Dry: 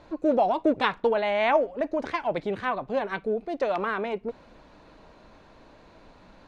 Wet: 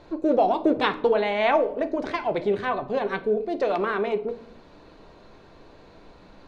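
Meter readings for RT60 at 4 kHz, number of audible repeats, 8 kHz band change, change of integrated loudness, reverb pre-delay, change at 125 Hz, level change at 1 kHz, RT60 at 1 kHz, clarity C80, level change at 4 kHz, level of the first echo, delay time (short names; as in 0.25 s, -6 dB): 0.40 s, none, n/a, +2.0 dB, 3 ms, +2.5 dB, +1.5 dB, 0.60 s, 19.0 dB, +2.5 dB, none, none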